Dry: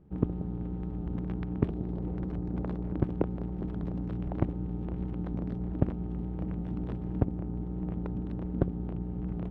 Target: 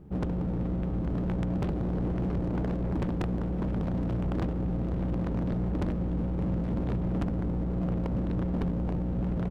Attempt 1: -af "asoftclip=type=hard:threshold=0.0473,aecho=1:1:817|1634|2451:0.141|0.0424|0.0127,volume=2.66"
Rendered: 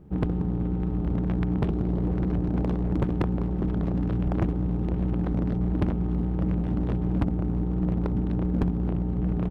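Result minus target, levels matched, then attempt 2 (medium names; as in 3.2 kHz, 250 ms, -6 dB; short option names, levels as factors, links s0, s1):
hard clipper: distortion -4 dB
-af "asoftclip=type=hard:threshold=0.0188,aecho=1:1:817|1634|2451:0.141|0.0424|0.0127,volume=2.66"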